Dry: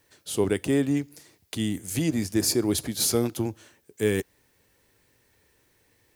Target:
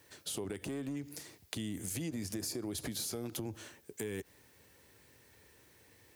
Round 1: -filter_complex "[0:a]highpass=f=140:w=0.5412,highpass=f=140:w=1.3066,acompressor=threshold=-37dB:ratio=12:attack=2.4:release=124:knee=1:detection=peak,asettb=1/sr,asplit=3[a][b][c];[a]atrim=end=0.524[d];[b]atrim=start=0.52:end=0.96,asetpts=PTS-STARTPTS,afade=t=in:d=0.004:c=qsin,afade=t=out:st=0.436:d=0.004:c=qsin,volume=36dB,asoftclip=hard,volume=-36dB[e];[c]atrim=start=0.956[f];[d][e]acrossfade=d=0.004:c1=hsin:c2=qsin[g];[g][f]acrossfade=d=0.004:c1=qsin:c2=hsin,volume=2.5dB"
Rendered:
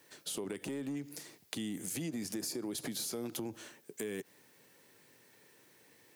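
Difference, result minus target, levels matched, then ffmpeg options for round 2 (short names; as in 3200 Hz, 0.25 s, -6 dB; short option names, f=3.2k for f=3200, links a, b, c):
125 Hz band -4.5 dB
-filter_complex "[0:a]highpass=f=54:w=0.5412,highpass=f=54:w=1.3066,acompressor=threshold=-37dB:ratio=12:attack=2.4:release=124:knee=1:detection=peak,asettb=1/sr,asplit=3[a][b][c];[a]atrim=end=0.524[d];[b]atrim=start=0.52:end=0.96,asetpts=PTS-STARTPTS,afade=t=in:d=0.004:c=qsin,afade=t=out:st=0.436:d=0.004:c=qsin,volume=36dB,asoftclip=hard,volume=-36dB[e];[c]atrim=start=0.956[f];[d][e]acrossfade=d=0.004:c1=hsin:c2=qsin[g];[g][f]acrossfade=d=0.004:c1=qsin:c2=hsin,volume=2.5dB"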